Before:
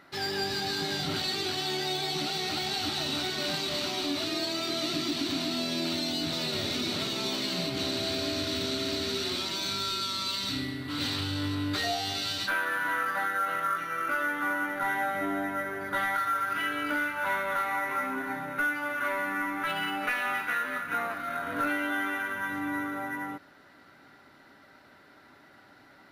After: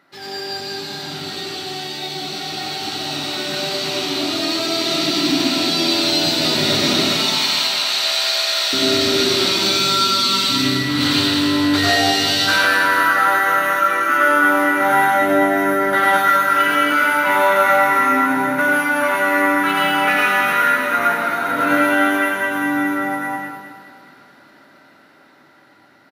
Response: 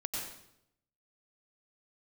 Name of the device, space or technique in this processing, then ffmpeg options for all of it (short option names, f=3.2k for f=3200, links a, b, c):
far laptop microphone: -filter_complex "[0:a]asettb=1/sr,asplit=3[a][b][c];[a]atrim=end=7.064[d];[b]atrim=start=7.06:end=8.73,asetpts=PTS-STARTPTS,afade=t=in:d=0.004:c=qsin,afade=t=out:st=1.666:d=0.004:c=qsin,highpass=f=740:w=0.5412,highpass=f=740:w=1.3066[e];[c]atrim=start=8.726[f];[d][e]acrossfade=d=0.004:c1=hsin:c2=qsin[g];[g][f]acrossfade=d=0.004:c1=qsin:c2=hsin,aecho=1:1:208|416|624|832|1040|1248:0.376|0.184|0.0902|0.0442|0.0217|0.0106[h];[1:a]atrim=start_sample=2205[i];[h][i]afir=irnorm=-1:irlink=0,highpass=130,dynaudnorm=f=530:g=17:m=13.5dB"